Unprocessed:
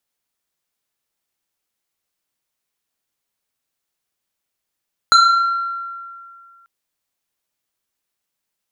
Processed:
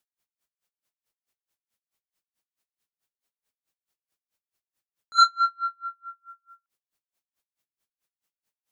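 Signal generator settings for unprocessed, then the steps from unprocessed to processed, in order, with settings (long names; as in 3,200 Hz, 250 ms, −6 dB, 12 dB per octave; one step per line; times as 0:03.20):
two-operator FM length 1.54 s, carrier 1,370 Hz, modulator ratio 1.98, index 1.2, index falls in 1.34 s exponential, decay 2.17 s, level −6 dB
tremolo with a sine in dB 4.6 Hz, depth 37 dB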